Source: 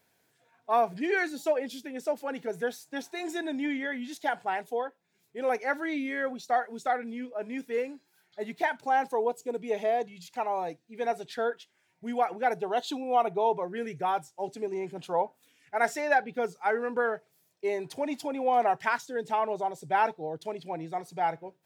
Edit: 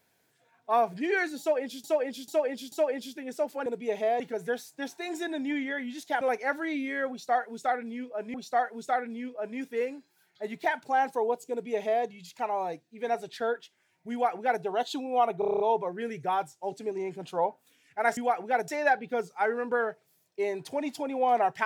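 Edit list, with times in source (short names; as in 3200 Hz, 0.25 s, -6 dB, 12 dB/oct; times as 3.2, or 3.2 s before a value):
1.4–1.84 loop, 4 plays
4.35–5.42 cut
6.31–7.55 loop, 2 plays
9.48–10.02 copy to 2.34
12.09–12.6 copy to 15.93
13.36 stutter 0.03 s, 8 plays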